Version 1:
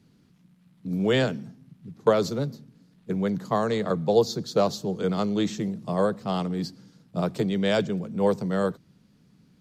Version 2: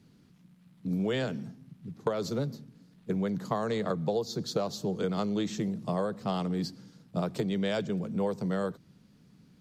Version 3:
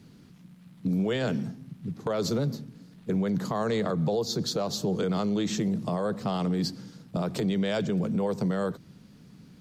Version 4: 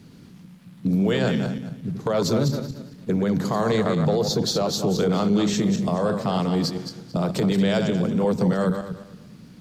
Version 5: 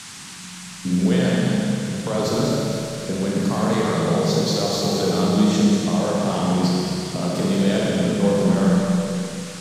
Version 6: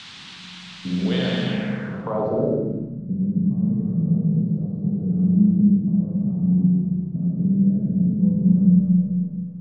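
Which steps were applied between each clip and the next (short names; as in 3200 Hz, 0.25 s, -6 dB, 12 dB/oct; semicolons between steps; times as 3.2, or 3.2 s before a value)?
compressor 10:1, threshold -26 dBFS, peak gain reduction 13 dB
limiter -27 dBFS, peak gain reduction 11 dB; gain +7.5 dB
regenerating reverse delay 0.113 s, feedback 47%, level -6 dB; gain +5 dB
Schroeder reverb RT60 2.9 s, combs from 30 ms, DRR -4 dB; band noise 850–9000 Hz -35 dBFS; gain -3.5 dB
low-pass sweep 3600 Hz -> 180 Hz, 1.42–3.08; gain -4 dB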